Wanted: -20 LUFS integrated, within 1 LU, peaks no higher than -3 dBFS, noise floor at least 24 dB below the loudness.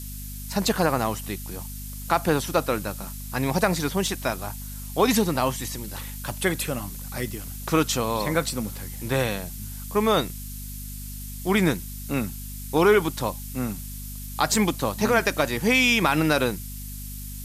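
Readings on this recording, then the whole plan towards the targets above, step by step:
hum 50 Hz; highest harmonic 250 Hz; hum level -35 dBFS; noise floor -36 dBFS; noise floor target -49 dBFS; loudness -25.0 LUFS; peak level -6.5 dBFS; loudness target -20.0 LUFS
-> de-hum 50 Hz, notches 5; noise print and reduce 13 dB; trim +5 dB; peak limiter -3 dBFS

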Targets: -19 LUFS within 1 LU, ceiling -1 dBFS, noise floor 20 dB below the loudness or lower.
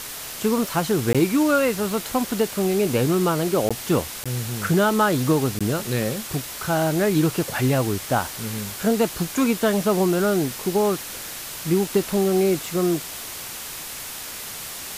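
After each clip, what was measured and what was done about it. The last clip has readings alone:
dropouts 4; longest dropout 16 ms; noise floor -35 dBFS; noise floor target -43 dBFS; loudness -22.5 LUFS; peak level -7.5 dBFS; loudness target -19.0 LUFS
-> interpolate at 1.13/3.69/4.24/5.59 s, 16 ms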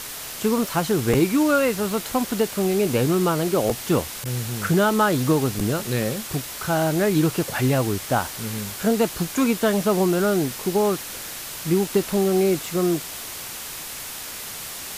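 dropouts 0; noise floor -35 dBFS; noise floor target -43 dBFS
-> noise reduction 8 dB, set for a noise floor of -35 dBFS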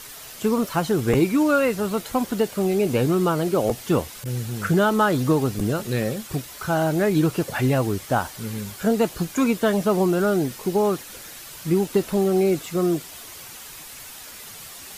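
noise floor -40 dBFS; noise floor target -43 dBFS
-> noise reduction 6 dB, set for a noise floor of -40 dBFS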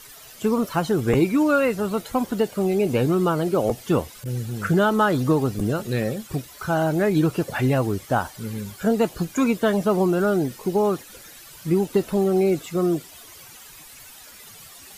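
noise floor -45 dBFS; loudness -22.5 LUFS; peak level -7.5 dBFS; loudness target -19.0 LUFS
-> trim +3.5 dB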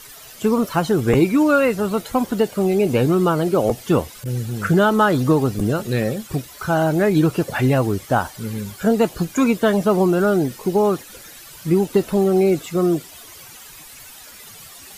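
loudness -19.0 LUFS; peak level -4.0 dBFS; noise floor -41 dBFS

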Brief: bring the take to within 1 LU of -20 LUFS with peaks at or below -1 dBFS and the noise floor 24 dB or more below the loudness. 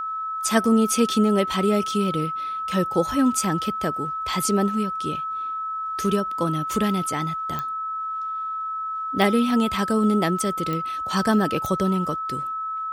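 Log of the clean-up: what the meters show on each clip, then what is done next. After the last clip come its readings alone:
clicks found 4; steady tone 1.3 kHz; tone level -26 dBFS; loudness -23.5 LUFS; peak level -5.5 dBFS; loudness target -20.0 LUFS
-> de-click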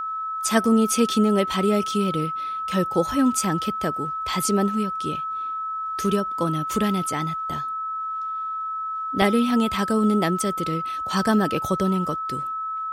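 clicks found 0; steady tone 1.3 kHz; tone level -26 dBFS
-> band-stop 1.3 kHz, Q 30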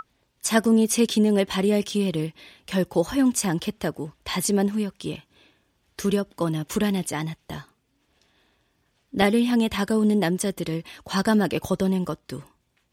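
steady tone not found; loudness -24.0 LUFS; peak level -6.5 dBFS; loudness target -20.0 LUFS
-> trim +4 dB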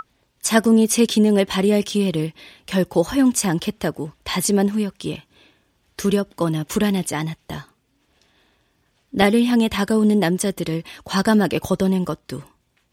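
loudness -20.0 LUFS; peak level -2.5 dBFS; noise floor -66 dBFS

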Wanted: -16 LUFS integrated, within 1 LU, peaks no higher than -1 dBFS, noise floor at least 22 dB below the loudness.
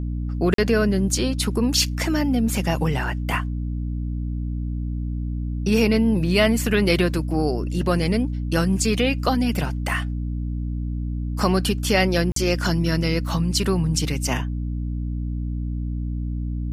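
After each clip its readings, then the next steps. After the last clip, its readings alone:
dropouts 2; longest dropout 43 ms; hum 60 Hz; highest harmonic 300 Hz; hum level -24 dBFS; loudness -23.0 LUFS; peak level -3.5 dBFS; loudness target -16.0 LUFS
-> interpolate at 0.54/12.32 s, 43 ms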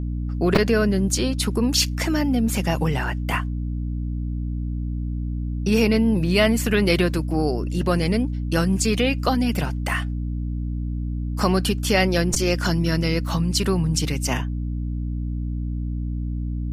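dropouts 0; hum 60 Hz; highest harmonic 300 Hz; hum level -24 dBFS
-> hum notches 60/120/180/240/300 Hz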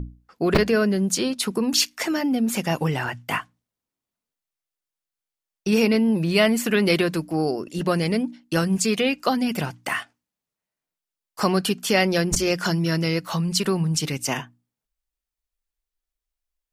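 hum not found; loudness -22.5 LUFS; peak level -2.5 dBFS; loudness target -16.0 LUFS
-> trim +6.5 dB; peak limiter -1 dBFS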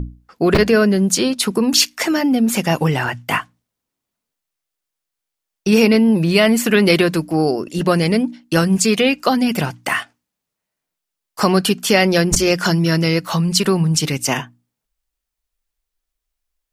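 loudness -16.5 LUFS; peak level -1.0 dBFS; noise floor -82 dBFS

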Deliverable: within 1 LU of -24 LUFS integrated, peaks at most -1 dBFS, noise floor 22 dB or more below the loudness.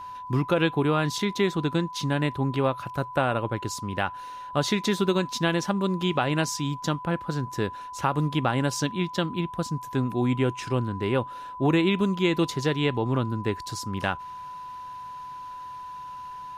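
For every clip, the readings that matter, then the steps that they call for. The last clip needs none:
steady tone 1 kHz; tone level -36 dBFS; loudness -26.5 LUFS; peak level -10.5 dBFS; loudness target -24.0 LUFS
-> band-stop 1 kHz, Q 30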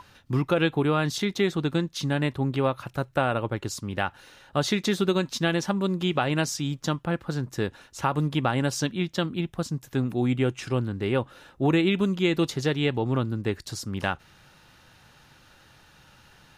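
steady tone not found; loudness -27.0 LUFS; peak level -11.0 dBFS; loudness target -24.0 LUFS
-> trim +3 dB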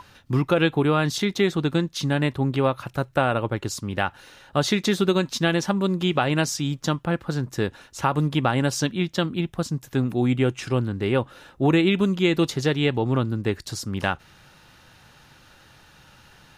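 loudness -24.0 LUFS; peak level -8.0 dBFS; noise floor -53 dBFS

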